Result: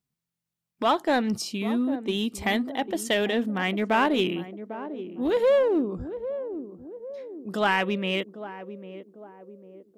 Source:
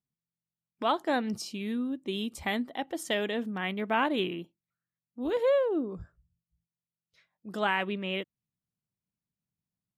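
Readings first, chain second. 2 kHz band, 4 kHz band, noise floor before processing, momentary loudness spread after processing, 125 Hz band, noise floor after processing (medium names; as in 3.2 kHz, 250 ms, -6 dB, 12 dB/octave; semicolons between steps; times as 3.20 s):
+5.0 dB, +5.5 dB, under -85 dBFS, 17 LU, +6.5 dB, under -85 dBFS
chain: in parallel at -4 dB: hard clipper -27 dBFS, distortion -10 dB; on the sum: band-passed feedback delay 799 ms, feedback 53%, band-pass 370 Hz, level -10.5 dB; trim +2 dB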